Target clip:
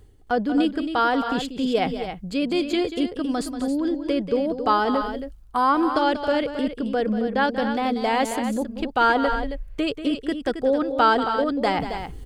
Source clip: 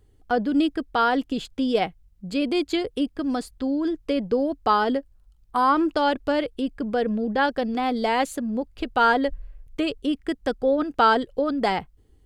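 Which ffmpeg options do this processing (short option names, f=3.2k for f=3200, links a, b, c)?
-af "areverse,acompressor=mode=upward:threshold=-22dB:ratio=2.5,areverse,aecho=1:1:186.6|271.1:0.282|0.355"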